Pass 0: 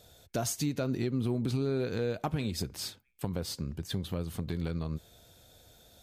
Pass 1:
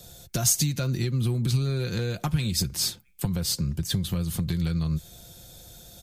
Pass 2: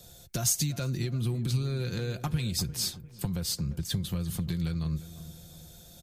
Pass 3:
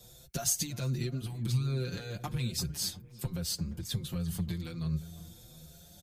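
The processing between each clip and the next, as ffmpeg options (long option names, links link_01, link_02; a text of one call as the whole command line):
ffmpeg -i in.wav -filter_complex "[0:a]bass=frequency=250:gain=8,treble=frequency=4000:gain=8,aecho=1:1:5.7:0.43,acrossover=split=130|1200[link_01][link_02][link_03];[link_02]acompressor=threshold=-36dB:ratio=6[link_04];[link_01][link_04][link_03]amix=inputs=3:normalize=0,volume=5dB" out.wav
ffmpeg -i in.wav -filter_complex "[0:a]asplit=2[link_01][link_02];[link_02]adelay=349,lowpass=frequency=1300:poles=1,volume=-14dB,asplit=2[link_03][link_04];[link_04]adelay=349,lowpass=frequency=1300:poles=1,volume=0.46,asplit=2[link_05][link_06];[link_06]adelay=349,lowpass=frequency=1300:poles=1,volume=0.46,asplit=2[link_07][link_08];[link_08]adelay=349,lowpass=frequency=1300:poles=1,volume=0.46[link_09];[link_01][link_03][link_05][link_07][link_09]amix=inputs=5:normalize=0,volume=-4.5dB" out.wav
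ffmpeg -i in.wav -filter_complex "[0:a]asplit=2[link_01][link_02];[link_02]adelay=6.2,afreqshift=1.3[link_03];[link_01][link_03]amix=inputs=2:normalize=1" out.wav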